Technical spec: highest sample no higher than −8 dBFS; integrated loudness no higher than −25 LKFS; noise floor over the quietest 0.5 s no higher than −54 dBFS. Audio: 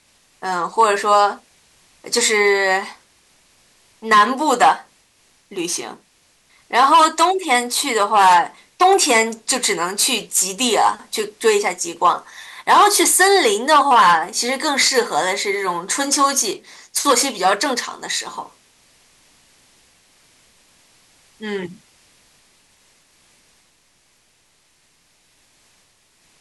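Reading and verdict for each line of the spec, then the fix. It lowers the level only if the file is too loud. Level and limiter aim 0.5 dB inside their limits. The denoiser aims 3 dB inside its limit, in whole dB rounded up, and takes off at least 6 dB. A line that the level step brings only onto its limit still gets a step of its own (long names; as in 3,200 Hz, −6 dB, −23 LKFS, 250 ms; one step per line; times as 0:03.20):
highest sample −4.0 dBFS: out of spec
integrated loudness −16.5 LKFS: out of spec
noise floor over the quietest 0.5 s −59 dBFS: in spec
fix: level −9 dB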